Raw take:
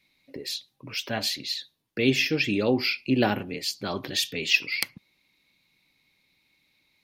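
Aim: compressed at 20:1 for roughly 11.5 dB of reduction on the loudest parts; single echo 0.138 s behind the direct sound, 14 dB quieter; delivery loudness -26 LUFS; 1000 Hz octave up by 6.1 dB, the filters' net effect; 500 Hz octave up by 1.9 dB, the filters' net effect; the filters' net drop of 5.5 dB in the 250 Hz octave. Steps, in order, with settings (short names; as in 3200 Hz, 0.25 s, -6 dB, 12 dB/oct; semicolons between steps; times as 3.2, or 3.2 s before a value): bell 250 Hz -8 dB; bell 500 Hz +3 dB; bell 1000 Hz +8 dB; compressor 20:1, threshold -25 dBFS; echo 0.138 s -14 dB; gain +4.5 dB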